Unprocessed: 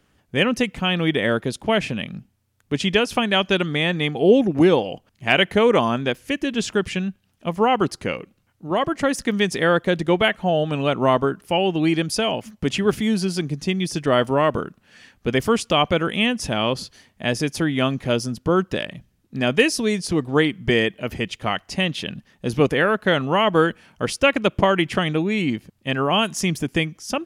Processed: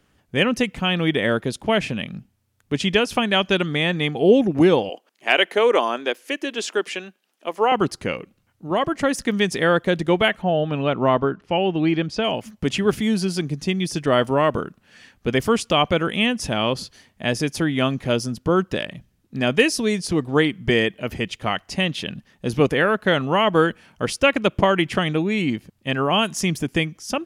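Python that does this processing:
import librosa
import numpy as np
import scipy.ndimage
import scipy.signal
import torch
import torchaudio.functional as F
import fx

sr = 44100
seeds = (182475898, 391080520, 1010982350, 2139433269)

y = fx.highpass(x, sr, hz=320.0, slope=24, at=(4.89, 7.72))
y = fx.air_absorb(y, sr, metres=160.0, at=(10.41, 12.23), fade=0.02)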